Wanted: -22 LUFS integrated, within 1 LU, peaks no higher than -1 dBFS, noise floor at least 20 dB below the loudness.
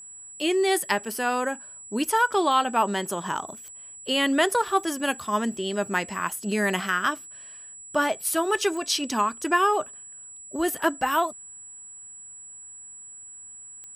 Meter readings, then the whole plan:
clicks found 4; steady tone 7.8 kHz; tone level -41 dBFS; loudness -25.0 LUFS; peak level -8.5 dBFS; loudness target -22.0 LUFS
-> de-click; band-stop 7.8 kHz, Q 30; trim +3 dB

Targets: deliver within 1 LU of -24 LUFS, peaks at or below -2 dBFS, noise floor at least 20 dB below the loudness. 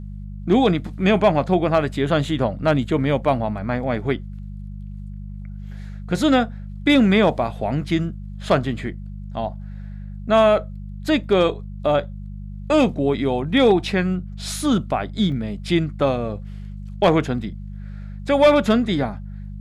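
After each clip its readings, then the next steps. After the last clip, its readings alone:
dropouts 1; longest dropout 1.7 ms; hum 50 Hz; highest harmonic 200 Hz; hum level -30 dBFS; loudness -20.5 LUFS; peak level -6.5 dBFS; loudness target -24.0 LUFS
-> interpolate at 15.32 s, 1.7 ms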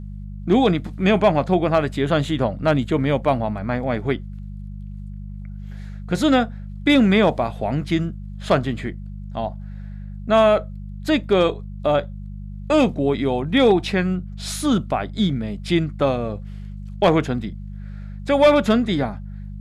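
dropouts 0; hum 50 Hz; highest harmonic 200 Hz; hum level -30 dBFS
-> de-hum 50 Hz, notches 4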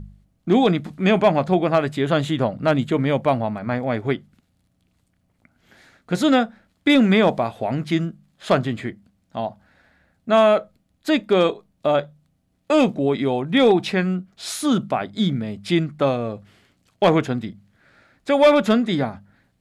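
hum not found; loudness -20.5 LUFS; peak level -6.5 dBFS; loudness target -24.0 LUFS
-> trim -3.5 dB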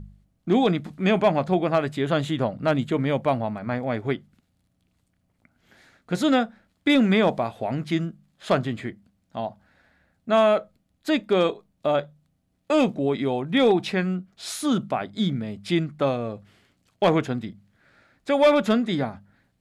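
loudness -24.0 LUFS; peak level -10.0 dBFS; noise floor -71 dBFS

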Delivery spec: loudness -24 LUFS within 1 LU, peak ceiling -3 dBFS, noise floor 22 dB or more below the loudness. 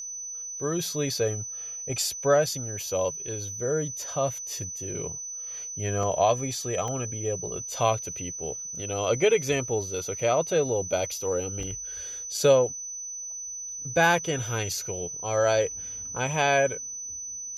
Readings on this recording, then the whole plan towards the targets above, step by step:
dropouts 3; longest dropout 2.5 ms; steady tone 6 kHz; tone level -34 dBFS; loudness -27.5 LUFS; peak level -9.0 dBFS; loudness target -24.0 LUFS
-> interpolate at 6.03/6.88/11.63 s, 2.5 ms; band-stop 6 kHz, Q 30; trim +3.5 dB

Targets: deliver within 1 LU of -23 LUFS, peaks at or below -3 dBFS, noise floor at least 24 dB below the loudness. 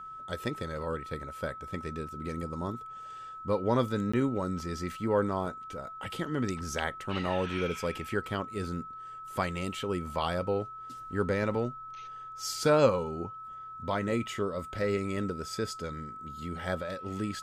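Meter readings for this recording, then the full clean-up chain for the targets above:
dropouts 1; longest dropout 15 ms; steady tone 1.3 kHz; tone level -41 dBFS; loudness -32.5 LUFS; peak level -11.5 dBFS; loudness target -23.0 LUFS
-> interpolate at 4.12 s, 15 ms; band-stop 1.3 kHz, Q 30; trim +9.5 dB; peak limiter -3 dBFS

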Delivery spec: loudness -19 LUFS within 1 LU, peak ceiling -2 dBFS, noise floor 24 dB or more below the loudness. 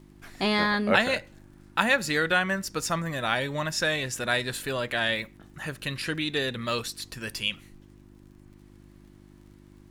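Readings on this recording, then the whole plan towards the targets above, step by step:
tick rate 29 per s; hum 50 Hz; highest harmonic 350 Hz; hum level -52 dBFS; loudness -27.0 LUFS; peak level -5.5 dBFS; loudness target -19.0 LUFS
-> de-click; de-hum 50 Hz, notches 7; trim +8 dB; peak limiter -2 dBFS

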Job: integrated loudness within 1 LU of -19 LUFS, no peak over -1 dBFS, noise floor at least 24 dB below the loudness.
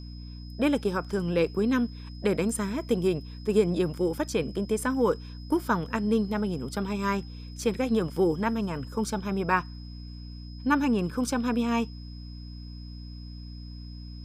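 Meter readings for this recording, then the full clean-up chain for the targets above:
hum 60 Hz; highest harmonic 300 Hz; hum level -39 dBFS; steady tone 5.1 kHz; tone level -51 dBFS; loudness -28.0 LUFS; peak level -10.5 dBFS; loudness target -19.0 LUFS
-> de-hum 60 Hz, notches 5; band-stop 5.1 kHz, Q 30; trim +9 dB

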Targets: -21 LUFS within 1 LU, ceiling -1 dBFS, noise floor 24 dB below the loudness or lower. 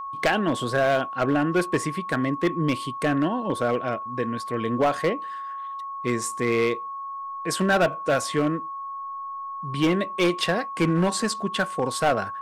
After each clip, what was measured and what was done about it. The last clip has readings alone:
clipped samples 1.4%; clipping level -15.0 dBFS; steady tone 1.1 kHz; tone level -31 dBFS; loudness -25.0 LUFS; peak level -15.0 dBFS; loudness target -21.0 LUFS
-> clip repair -15 dBFS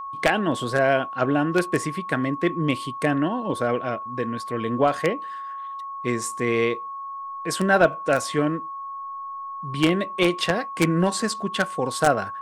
clipped samples 0.0%; steady tone 1.1 kHz; tone level -31 dBFS
-> band-stop 1.1 kHz, Q 30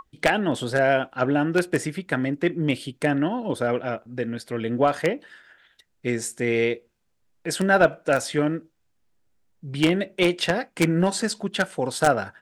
steady tone not found; loudness -24.0 LUFS; peak level -5.5 dBFS; loudness target -21.0 LUFS
-> trim +3 dB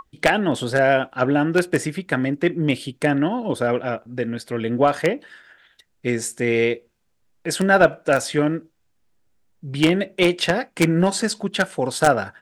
loudness -21.0 LUFS; peak level -2.5 dBFS; noise floor -66 dBFS

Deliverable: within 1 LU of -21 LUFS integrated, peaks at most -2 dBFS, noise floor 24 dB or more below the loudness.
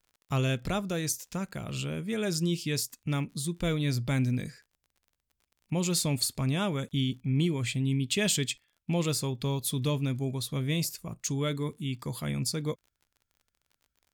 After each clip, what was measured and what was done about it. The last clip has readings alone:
tick rate 34 per s; loudness -30.5 LUFS; peak level -14.5 dBFS; loudness target -21.0 LUFS
-> de-click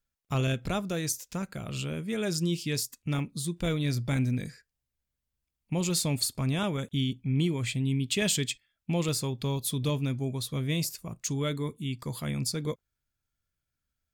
tick rate 0.78 per s; loudness -30.5 LUFS; peak level -14.5 dBFS; loudness target -21.0 LUFS
-> trim +9.5 dB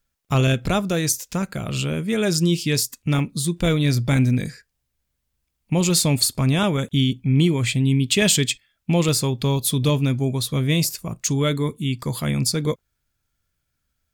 loudness -21.0 LUFS; peak level -5.0 dBFS; noise floor -76 dBFS

